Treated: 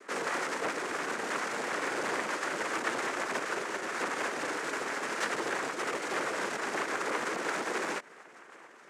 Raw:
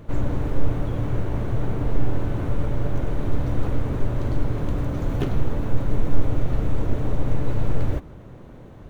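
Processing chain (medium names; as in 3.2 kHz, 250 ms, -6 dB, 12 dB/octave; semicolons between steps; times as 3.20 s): LPC vocoder at 8 kHz whisper; in parallel at -6.5 dB: bit crusher 5-bit; 3.43–3.99 s: on the sum: compression 2:1, threshold -15 dBFS, peak gain reduction 4 dB; noise-vocoded speech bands 3; saturation -18 dBFS, distortion -11 dB; high-pass 750 Hz 12 dB/octave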